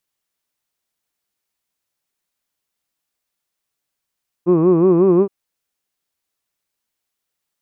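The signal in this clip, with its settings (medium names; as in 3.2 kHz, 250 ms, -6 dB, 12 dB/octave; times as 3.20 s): formant vowel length 0.82 s, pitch 167 Hz, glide +2 st, vibrato 5.5 Hz, vibrato depth 1.35 st, F1 370 Hz, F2 1.1 kHz, F3 2.5 kHz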